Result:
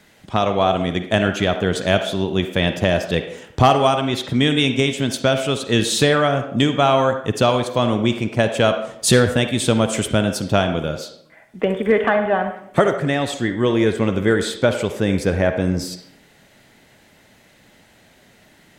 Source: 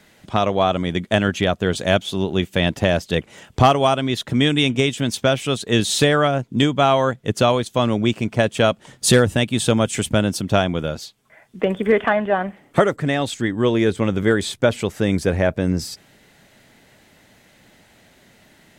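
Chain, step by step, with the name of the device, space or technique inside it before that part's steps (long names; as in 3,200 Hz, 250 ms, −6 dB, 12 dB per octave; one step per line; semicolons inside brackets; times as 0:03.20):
filtered reverb send (on a send: high-pass filter 290 Hz 12 dB per octave + low-pass filter 5,100 Hz 12 dB per octave + convolution reverb RT60 0.70 s, pre-delay 45 ms, DRR 7 dB)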